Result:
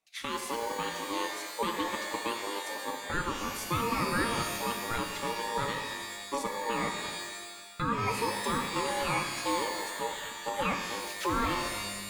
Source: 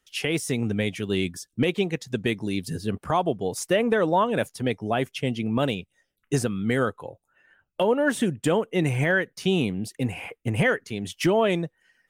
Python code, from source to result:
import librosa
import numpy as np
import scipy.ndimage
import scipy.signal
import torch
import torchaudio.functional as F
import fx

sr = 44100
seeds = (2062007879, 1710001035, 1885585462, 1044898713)

y = x * np.sin(2.0 * np.pi * 700.0 * np.arange(len(x)) / sr)
y = fx.rev_shimmer(y, sr, seeds[0], rt60_s=1.4, semitones=12, shimmer_db=-2, drr_db=5.0)
y = y * 10.0 ** (-7.0 / 20.0)